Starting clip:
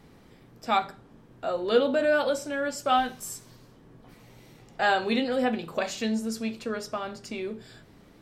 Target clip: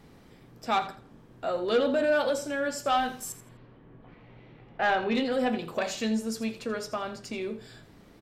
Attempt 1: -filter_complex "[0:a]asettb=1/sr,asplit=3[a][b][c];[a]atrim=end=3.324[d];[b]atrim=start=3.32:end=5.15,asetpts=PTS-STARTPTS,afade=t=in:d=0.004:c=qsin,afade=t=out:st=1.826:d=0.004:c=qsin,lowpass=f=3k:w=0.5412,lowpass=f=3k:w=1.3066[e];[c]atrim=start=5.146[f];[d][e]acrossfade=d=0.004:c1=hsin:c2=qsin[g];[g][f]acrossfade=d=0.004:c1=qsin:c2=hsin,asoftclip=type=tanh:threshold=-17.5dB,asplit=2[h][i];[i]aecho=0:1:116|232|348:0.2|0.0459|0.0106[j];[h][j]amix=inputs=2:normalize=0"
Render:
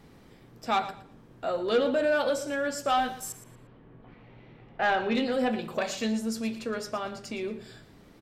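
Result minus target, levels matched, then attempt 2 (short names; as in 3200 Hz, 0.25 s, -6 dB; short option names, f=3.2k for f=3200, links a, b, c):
echo 33 ms late
-filter_complex "[0:a]asettb=1/sr,asplit=3[a][b][c];[a]atrim=end=3.324[d];[b]atrim=start=3.32:end=5.15,asetpts=PTS-STARTPTS,afade=t=in:d=0.004:c=qsin,afade=t=out:st=1.826:d=0.004:c=qsin,lowpass=f=3k:w=0.5412,lowpass=f=3k:w=1.3066[e];[c]atrim=start=5.146[f];[d][e]acrossfade=d=0.004:c1=hsin:c2=qsin[g];[g][f]acrossfade=d=0.004:c1=qsin:c2=hsin,asoftclip=type=tanh:threshold=-17.5dB,asplit=2[h][i];[i]aecho=0:1:83|166|249:0.2|0.0459|0.0106[j];[h][j]amix=inputs=2:normalize=0"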